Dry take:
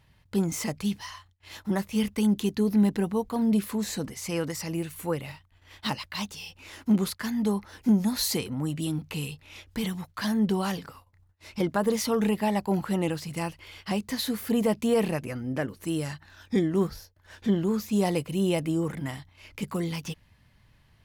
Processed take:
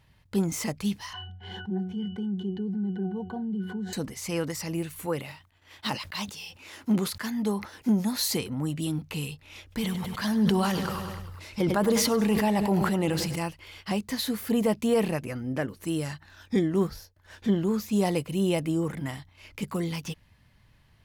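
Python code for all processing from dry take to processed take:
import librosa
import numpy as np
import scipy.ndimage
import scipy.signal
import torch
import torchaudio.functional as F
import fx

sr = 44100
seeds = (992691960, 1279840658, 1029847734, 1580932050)

y = fx.chain(x, sr, fx.highpass(hz=130.0, slope=24),
    fx.octave_resonator(note='F#', decay_s=0.2),
    fx.env_flatten(amount_pct=70), at=(1.13, 3.93))
y = fx.chain(y, sr, fx.highpass(hz=170.0, slope=6),
    fx.sustainer(db_per_s=140.0), at=(5.06, 8.29))
y = fx.chain(y, sr, fx.echo_feedback(ms=100, feedback_pct=54, wet_db=-14.5),
    fx.sustainer(db_per_s=24.0), at=(9.62, 13.36))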